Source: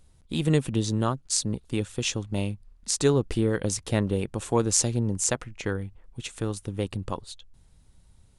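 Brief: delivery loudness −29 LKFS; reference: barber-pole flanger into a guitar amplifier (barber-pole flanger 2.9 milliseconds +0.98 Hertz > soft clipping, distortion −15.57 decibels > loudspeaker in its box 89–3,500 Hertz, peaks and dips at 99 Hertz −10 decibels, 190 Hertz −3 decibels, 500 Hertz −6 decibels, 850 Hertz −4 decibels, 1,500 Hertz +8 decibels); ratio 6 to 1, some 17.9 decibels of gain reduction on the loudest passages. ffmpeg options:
ffmpeg -i in.wav -filter_complex "[0:a]acompressor=threshold=-37dB:ratio=6,asplit=2[link_01][link_02];[link_02]adelay=2.9,afreqshift=0.98[link_03];[link_01][link_03]amix=inputs=2:normalize=1,asoftclip=threshold=-36dB,highpass=89,equalizer=frequency=99:width_type=q:width=4:gain=-10,equalizer=frequency=190:width_type=q:width=4:gain=-3,equalizer=frequency=500:width_type=q:width=4:gain=-6,equalizer=frequency=850:width_type=q:width=4:gain=-4,equalizer=frequency=1500:width_type=q:width=4:gain=8,lowpass=frequency=3500:width=0.5412,lowpass=frequency=3500:width=1.3066,volume=21.5dB" out.wav

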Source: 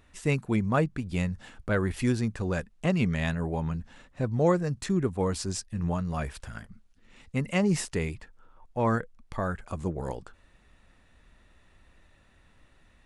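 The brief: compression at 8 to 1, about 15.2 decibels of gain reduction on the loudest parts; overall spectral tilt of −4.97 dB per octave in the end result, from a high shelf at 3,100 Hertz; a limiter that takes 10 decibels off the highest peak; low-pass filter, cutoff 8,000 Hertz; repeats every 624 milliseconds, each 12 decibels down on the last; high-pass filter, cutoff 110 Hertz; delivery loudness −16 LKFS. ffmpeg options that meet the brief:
ffmpeg -i in.wav -af "highpass=110,lowpass=8000,highshelf=frequency=3100:gain=6.5,acompressor=threshold=-36dB:ratio=8,alimiter=level_in=8dB:limit=-24dB:level=0:latency=1,volume=-8dB,aecho=1:1:624|1248|1872:0.251|0.0628|0.0157,volume=27.5dB" out.wav

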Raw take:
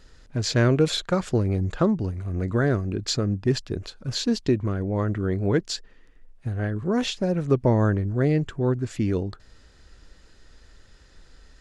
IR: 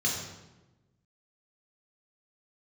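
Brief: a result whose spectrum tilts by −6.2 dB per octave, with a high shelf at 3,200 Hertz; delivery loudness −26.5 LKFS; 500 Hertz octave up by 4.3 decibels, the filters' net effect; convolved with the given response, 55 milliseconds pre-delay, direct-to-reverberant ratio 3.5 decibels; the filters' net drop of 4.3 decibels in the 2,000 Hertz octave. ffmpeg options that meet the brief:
-filter_complex "[0:a]equalizer=frequency=500:width_type=o:gain=5.5,equalizer=frequency=2000:width_type=o:gain=-9,highshelf=frequency=3200:gain=7.5,asplit=2[link_01][link_02];[1:a]atrim=start_sample=2205,adelay=55[link_03];[link_02][link_03]afir=irnorm=-1:irlink=0,volume=-11.5dB[link_04];[link_01][link_04]amix=inputs=2:normalize=0,volume=-7dB"

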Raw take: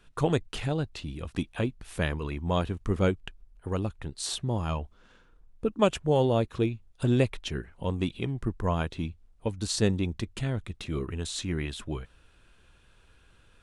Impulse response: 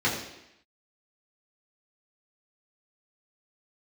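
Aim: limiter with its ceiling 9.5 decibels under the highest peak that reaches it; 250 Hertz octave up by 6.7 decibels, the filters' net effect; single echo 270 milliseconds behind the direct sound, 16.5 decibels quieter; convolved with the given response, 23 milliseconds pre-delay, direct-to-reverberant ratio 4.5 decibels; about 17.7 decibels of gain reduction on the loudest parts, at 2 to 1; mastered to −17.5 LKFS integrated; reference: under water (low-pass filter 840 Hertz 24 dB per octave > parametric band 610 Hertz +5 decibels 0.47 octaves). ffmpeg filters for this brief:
-filter_complex "[0:a]equalizer=frequency=250:width_type=o:gain=8.5,acompressor=threshold=-49dB:ratio=2,alimiter=level_in=10.5dB:limit=-24dB:level=0:latency=1,volume=-10.5dB,aecho=1:1:270:0.15,asplit=2[link_01][link_02];[1:a]atrim=start_sample=2205,adelay=23[link_03];[link_02][link_03]afir=irnorm=-1:irlink=0,volume=-18dB[link_04];[link_01][link_04]amix=inputs=2:normalize=0,lowpass=frequency=840:width=0.5412,lowpass=frequency=840:width=1.3066,equalizer=frequency=610:width_type=o:width=0.47:gain=5,volume=26dB"

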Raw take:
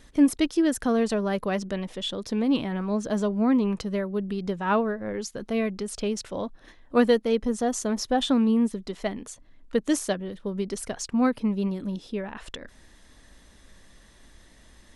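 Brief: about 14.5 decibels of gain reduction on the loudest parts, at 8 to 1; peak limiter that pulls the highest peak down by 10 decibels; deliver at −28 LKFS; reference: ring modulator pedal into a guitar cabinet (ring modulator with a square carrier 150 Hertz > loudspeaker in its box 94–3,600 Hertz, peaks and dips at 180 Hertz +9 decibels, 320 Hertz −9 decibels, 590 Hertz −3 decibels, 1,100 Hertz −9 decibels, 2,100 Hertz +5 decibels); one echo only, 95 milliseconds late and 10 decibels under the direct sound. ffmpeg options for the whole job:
ffmpeg -i in.wav -af "acompressor=threshold=-30dB:ratio=8,alimiter=level_in=6dB:limit=-24dB:level=0:latency=1,volume=-6dB,aecho=1:1:95:0.316,aeval=exprs='val(0)*sgn(sin(2*PI*150*n/s))':channel_layout=same,highpass=94,equalizer=frequency=180:width_type=q:width=4:gain=9,equalizer=frequency=320:width_type=q:width=4:gain=-9,equalizer=frequency=590:width_type=q:width=4:gain=-3,equalizer=frequency=1100:width_type=q:width=4:gain=-9,equalizer=frequency=2100:width_type=q:width=4:gain=5,lowpass=frequency=3600:width=0.5412,lowpass=frequency=3600:width=1.3066,volume=13dB" out.wav

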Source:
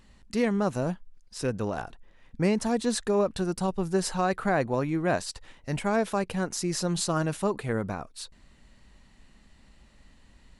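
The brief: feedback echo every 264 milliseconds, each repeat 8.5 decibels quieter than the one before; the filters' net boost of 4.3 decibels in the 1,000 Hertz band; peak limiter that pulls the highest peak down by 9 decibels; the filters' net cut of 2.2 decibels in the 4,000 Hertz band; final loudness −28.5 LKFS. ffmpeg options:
ffmpeg -i in.wav -af "equalizer=frequency=1000:width_type=o:gain=6,equalizer=frequency=4000:width_type=o:gain=-3,alimiter=limit=-20dB:level=0:latency=1,aecho=1:1:264|528|792|1056:0.376|0.143|0.0543|0.0206,volume=2.5dB" out.wav

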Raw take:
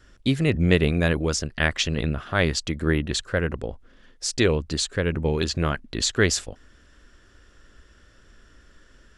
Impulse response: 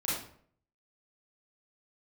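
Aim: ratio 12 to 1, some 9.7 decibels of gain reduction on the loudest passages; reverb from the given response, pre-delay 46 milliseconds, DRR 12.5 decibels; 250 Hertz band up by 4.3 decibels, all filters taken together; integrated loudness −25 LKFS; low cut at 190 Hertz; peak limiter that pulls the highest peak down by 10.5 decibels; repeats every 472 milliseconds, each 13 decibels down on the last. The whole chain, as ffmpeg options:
-filter_complex "[0:a]highpass=190,equalizer=frequency=250:width_type=o:gain=8,acompressor=threshold=-21dB:ratio=12,alimiter=limit=-17.5dB:level=0:latency=1,aecho=1:1:472|944|1416:0.224|0.0493|0.0108,asplit=2[link_01][link_02];[1:a]atrim=start_sample=2205,adelay=46[link_03];[link_02][link_03]afir=irnorm=-1:irlink=0,volume=-18.5dB[link_04];[link_01][link_04]amix=inputs=2:normalize=0,volume=4.5dB"

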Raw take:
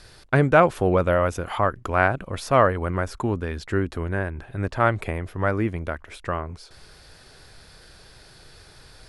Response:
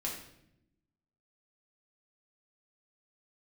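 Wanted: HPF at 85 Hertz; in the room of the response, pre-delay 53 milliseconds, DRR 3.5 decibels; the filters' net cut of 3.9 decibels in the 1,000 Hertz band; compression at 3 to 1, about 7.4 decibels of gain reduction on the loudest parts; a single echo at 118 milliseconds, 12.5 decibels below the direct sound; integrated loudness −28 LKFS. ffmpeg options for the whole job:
-filter_complex "[0:a]highpass=85,equalizer=frequency=1000:width_type=o:gain=-5.5,acompressor=threshold=-23dB:ratio=3,aecho=1:1:118:0.237,asplit=2[link_01][link_02];[1:a]atrim=start_sample=2205,adelay=53[link_03];[link_02][link_03]afir=irnorm=-1:irlink=0,volume=-5.5dB[link_04];[link_01][link_04]amix=inputs=2:normalize=0,volume=-0.5dB"

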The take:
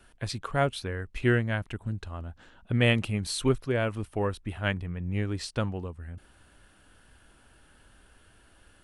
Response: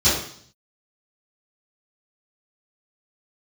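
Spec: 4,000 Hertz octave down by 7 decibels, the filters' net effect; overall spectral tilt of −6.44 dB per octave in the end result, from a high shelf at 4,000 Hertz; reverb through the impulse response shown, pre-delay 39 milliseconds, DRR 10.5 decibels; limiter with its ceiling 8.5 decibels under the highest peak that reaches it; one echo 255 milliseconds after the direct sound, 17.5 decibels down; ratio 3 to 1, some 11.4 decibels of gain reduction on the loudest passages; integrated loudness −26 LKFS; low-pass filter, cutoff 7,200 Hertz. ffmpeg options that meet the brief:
-filter_complex "[0:a]lowpass=7200,highshelf=frequency=4000:gain=-7.5,equalizer=frequency=4000:width_type=o:gain=-5,acompressor=threshold=-34dB:ratio=3,alimiter=level_in=6dB:limit=-24dB:level=0:latency=1,volume=-6dB,aecho=1:1:255:0.133,asplit=2[link_01][link_02];[1:a]atrim=start_sample=2205,adelay=39[link_03];[link_02][link_03]afir=irnorm=-1:irlink=0,volume=-29dB[link_04];[link_01][link_04]amix=inputs=2:normalize=0,volume=13.5dB"

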